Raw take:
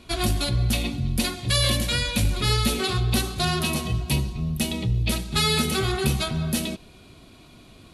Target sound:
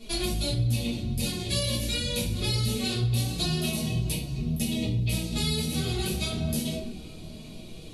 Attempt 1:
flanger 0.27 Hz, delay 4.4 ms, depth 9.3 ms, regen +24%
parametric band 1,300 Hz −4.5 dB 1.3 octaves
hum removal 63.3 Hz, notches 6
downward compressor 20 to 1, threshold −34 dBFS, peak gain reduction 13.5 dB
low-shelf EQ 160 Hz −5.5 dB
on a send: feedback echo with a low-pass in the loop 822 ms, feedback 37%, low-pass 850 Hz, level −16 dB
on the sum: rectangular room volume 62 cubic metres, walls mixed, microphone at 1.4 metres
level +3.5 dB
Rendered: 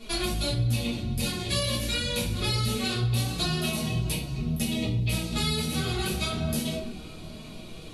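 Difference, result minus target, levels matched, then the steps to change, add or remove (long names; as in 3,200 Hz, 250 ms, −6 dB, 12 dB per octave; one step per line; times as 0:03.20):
1,000 Hz band +5.0 dB
change: parametric band 1,300 Hz −14.5 dB 1.3 octaves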